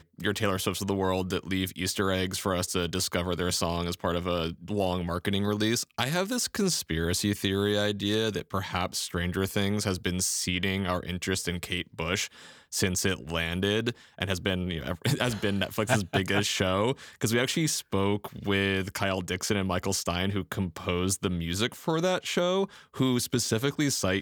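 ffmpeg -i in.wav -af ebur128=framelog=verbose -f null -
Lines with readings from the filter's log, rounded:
Integrated loudness:
  I:         -28.5 LUFS
  Threshold: -38.5 LUFS
Loudness range:
  LRA:         2.1 LU
  Threshold: -48.5 LUFS
  LRA low:   -29.5 LUFS
  LRA high:  -27.4 LUFS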